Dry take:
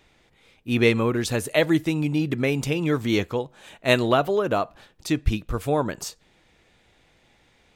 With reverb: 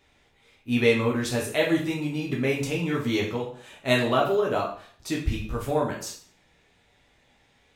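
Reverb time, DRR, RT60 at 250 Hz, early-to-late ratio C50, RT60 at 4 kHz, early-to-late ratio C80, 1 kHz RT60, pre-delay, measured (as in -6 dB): 0.50 s, -3.0 dB, 0.50 s, 6.5 dB, 0.45 s, 11.0 dB, 0.50 s, 4 ms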